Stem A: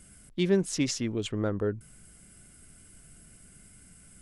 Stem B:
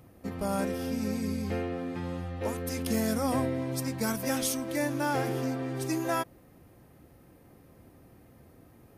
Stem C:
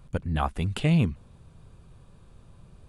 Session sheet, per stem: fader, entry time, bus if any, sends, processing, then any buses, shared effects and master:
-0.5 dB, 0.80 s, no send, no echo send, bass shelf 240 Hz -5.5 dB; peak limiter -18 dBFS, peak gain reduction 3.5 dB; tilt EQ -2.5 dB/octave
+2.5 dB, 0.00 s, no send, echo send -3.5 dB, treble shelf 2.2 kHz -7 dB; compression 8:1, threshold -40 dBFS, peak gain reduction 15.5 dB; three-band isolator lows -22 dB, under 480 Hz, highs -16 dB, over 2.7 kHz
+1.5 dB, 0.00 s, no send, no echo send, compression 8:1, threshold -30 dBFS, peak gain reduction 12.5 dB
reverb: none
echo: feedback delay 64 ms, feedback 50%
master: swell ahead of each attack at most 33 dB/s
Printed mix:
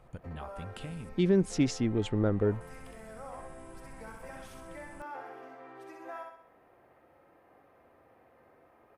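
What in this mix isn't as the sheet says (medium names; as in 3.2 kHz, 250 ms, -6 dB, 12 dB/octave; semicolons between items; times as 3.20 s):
stem C +1.5 dB -> -9.0 dB; master: missing swell ahead of each attack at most 33 dB/s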